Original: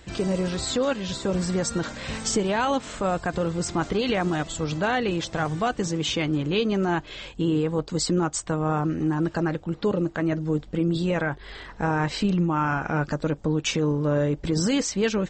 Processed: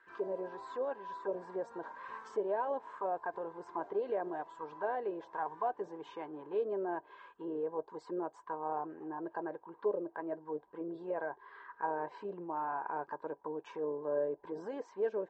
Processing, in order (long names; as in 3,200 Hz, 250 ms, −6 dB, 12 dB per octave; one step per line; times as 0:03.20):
hollow resonant body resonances 400/980/1,600 Hz, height 15 dB, ringing for 25 ms
envelope filter 640–1,400 Hz, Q 4.7, down, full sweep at −12 dBFS
level −8.5 dB